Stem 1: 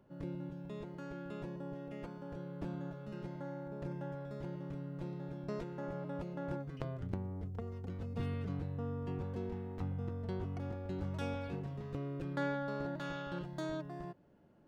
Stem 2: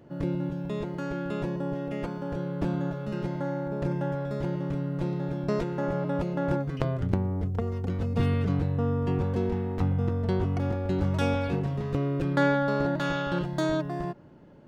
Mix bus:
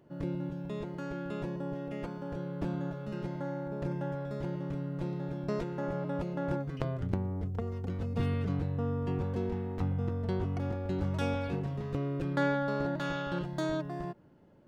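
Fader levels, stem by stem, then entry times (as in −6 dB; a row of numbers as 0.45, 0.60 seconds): −3.0, −9.0 decibels; 0.00, 0.00 seconds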